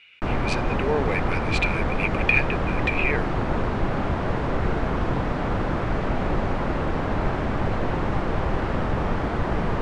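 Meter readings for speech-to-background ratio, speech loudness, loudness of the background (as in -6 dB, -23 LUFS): -0.5 dB, -26.5 LUFS, -26.0 LUFS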